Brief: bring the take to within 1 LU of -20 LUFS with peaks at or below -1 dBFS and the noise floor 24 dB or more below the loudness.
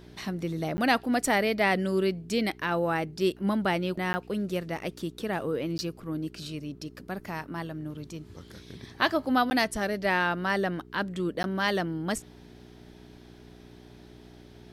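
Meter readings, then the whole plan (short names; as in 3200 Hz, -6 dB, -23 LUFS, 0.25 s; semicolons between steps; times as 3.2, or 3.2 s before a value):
dropouts 5; longest dropout 10 ms; hum 60 Hz; harmonics up to 420 Hz; hum level -51 dBFS; loudness -29.0 LUFS; peak -9.0 dBFS; loudness target -20.0 LUFS
-> interpolate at 0.77/4.13/5.78/9.5/11.43, 10 ms; de-hum 60 Hz, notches 7; gain +9 dB; limiter -1 dBFS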